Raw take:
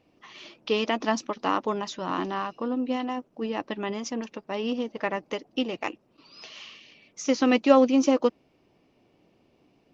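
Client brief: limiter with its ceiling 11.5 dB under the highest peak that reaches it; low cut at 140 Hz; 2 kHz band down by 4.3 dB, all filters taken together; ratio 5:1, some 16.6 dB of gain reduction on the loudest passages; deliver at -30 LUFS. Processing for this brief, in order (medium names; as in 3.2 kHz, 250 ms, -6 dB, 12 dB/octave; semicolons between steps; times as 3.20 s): high-pass 140 Hz; peaking EQ 2 kHz -5.5 dB; compression 5:1, threshold -32 dBFS; trim +11 dB; peak limiter -19 dBFS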